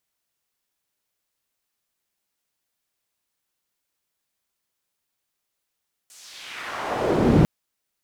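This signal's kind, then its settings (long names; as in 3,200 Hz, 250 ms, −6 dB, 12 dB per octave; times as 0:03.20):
filter sweep on noise pink, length 1.35 s bandpass, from 8,300 Hz, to 160 Hz, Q 1.5, exponential, gain ramp +35.5 dB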